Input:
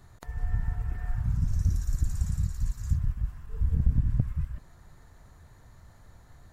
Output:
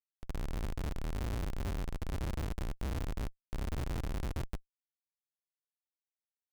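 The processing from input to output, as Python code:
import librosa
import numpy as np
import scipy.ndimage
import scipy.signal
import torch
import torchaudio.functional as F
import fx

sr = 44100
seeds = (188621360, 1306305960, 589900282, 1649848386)

y = fx.wiener(x, sr, points=15)
y = fx.level_steps(y, sr, step_db=17)
y = fx.schmitt(y, sr, flips_db=-38.5)
y = F.gain(torch.from_numpy(y), 2.5).numpy()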